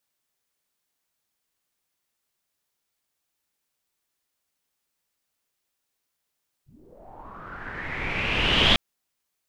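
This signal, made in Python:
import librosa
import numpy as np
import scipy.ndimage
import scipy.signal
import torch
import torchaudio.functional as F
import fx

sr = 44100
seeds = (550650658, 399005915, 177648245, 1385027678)

y = fx.riser_noise(sr, seeds[0], length_s=2.1, colour='pink', kind='lowpass', start_hz=100.0, end_hz=3300.0, q=5.6, swell_db=36, law='linear')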